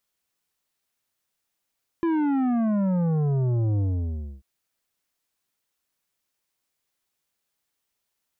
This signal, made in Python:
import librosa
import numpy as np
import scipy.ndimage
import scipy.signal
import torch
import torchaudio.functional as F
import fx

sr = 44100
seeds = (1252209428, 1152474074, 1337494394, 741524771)

y = fx.sub_drop(sr, level_db=-21.5, start_hz=340.0, length_s=2.39, drive_db=10, fade_s=0.63, end_hz=65.0)